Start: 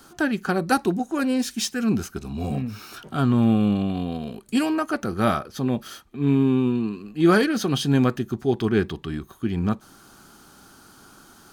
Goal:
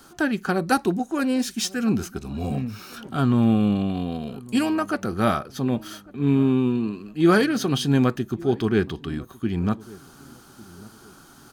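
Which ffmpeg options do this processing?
ffmpeg -i in.wav -filter_complex "[0:a]asplit=2[link_01][link_02];[link_02]adelay=1150,lowpass=frequency=850:poles=1,volume=-21dB,asplit=2[link_03][link_04];[link_04]adelay=1150,lowpass=frequency=850:poles=1,volume=0.37,asplit=2[link_05][link_06];[link_06]adelay=1150,lowpass=frequency=850:poles=1,volume=0.37[link_07];[link_01][link_03][link_05][link_07]amix=inputs=4:normalize=0" out.wav

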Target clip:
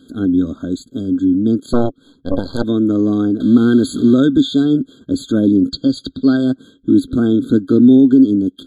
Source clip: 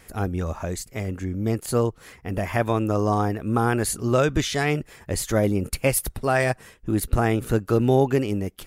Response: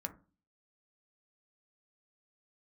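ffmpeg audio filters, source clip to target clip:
-filter_complex "[0:a]asettb=1/sr,asplit=3[link_01][link_02][link_03];[link_01]atrim=end=3.404[link_04];[link_02]atrim=start=3.4:end=4.14,asetpts=PTS-STARTPTS,afade=type=in:duration=0.004:curve=qsin,afade=type=out:start_time=0.736:duration=0.004:curve=qsin,aeval=exprs='val(0)+0.5*0.0447*sgn(val(0))':channel_layout=same[link_05];[link_03]atrim=start=4.136[link_06];[link_04][link_05]acrossfade=duration=0.004:curve1=hsin:curve2=qsin[link_07];[link_07][link_06]acrossfade=duration=0.004:curve1=qsin:curve2=hsin,asplit=3[link_08][link_09][link_10];[link_08]bandpass=frequency=270:width_type=q:width=8,volume=0dB[link_11];[link_09]bandpass=frequency=2290:width_type=q:width=8,volume=-6dB[link_12];[link_10]bandpass=frequency=3010:width_type=q:width=8,volume=-9dB[link_13];[link_11][link_12][link_13]amix=inputs=3:normalize=0,asettb=1/sr,asplit=3[link_14][link_15][link_16];[link_14]atrim=end=1.734[link_17];[link_15]atrim=start=1.73:end=2.64,asetpts=PTS-STARTPTS,afade=type=in:duration=0.004:curve=qsin,afade=type=out:start_time=0.906:duration=0.004:curve=qsin,aeval=exprs='0.0708*(cos(1*acos(clip(val(0)/0.0708,-1,1)))-cos(1*PI/2))+0.0126*(cos(3*acos(clip(val(0)/0.0708,-1,1)))-cos(3*PI/2))+0.0141*(cos(6*acos(clip(val(0)/0.0708,-1,1)))-cos(6*PI/2))':channel_layout=same[link_18];[link_16]atrim=start=2.636[link_19];[link_17][link_18]acrossfade=duration=0.004:curve1=hsin:curve2=qsin[link_20];[link_20][link_19]acrossfade=duration=0.004:curve1=qsin:curve2=hsin,asettb=1/sr,asplit=3[link_21][link_22][link_23];[link_21]atrim=end=5.714[link_24];[link_22]atrim=start=5.71:end=6.37,asetpts=PTS-STARTPTS,afade=type=in:duration=0.004:curve=qsin,afade=type=out:start_time=0.656:duration=0.004:curve=qsin,lowpass=frequency=5100:width_type=q:width=4.9[link_25];[link_23]atrim=start=6.366[link_26];[link_24][link_25]acrossfade=duration=0.004:curve1=hsin:curve2=qsin[link_27];[link_27][link_26]acrossfade=duration=0.004:curve1=qsin:curve2=hsin,alimiter=level_in=23.5dB:limit=-1dB:release=50:level=0:latency=1,afftfilt=real='re*eq(mod(floor(b*sr/1024/1600),2),0)':imag='im*eq(mod(floor(b*sr/1024/1600),2),0)':win_size=1024:overlap=0.75,volume=-1dB"

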